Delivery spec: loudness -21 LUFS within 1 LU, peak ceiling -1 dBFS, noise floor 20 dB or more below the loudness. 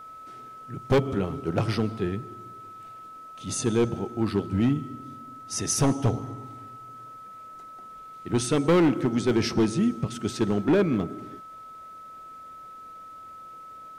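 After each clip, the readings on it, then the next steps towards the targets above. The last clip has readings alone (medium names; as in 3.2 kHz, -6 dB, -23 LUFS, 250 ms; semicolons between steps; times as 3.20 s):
clipped samples 1.2%; clipping level -16.0 dBFS; steady tone 1.3 kHz; tone level -41 dBFS; loudness -25.5 LUFS; peak level -16.0 dBFS; loudness target -21.0 LUFS
-> clip repair -16 dBFS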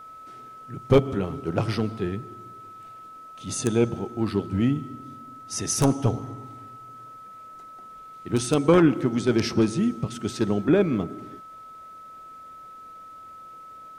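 clipped samples 0.0%; steady tone 1.3 kHz; tone level -41 dBFS
-> band-stop 1.3 kHz, Q 30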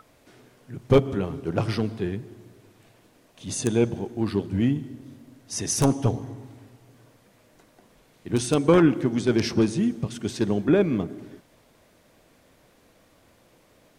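steady tone not found; loudness -24.5 LUFS; peak level -6.5 dBFS; loudness target -21.0 LUFS
-> trim +3.5 dB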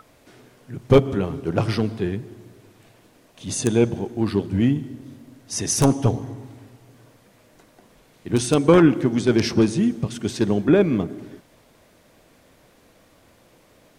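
loudness -21.0 LUFS; peak level -3.0 dBFS; noise floor -56 dBFS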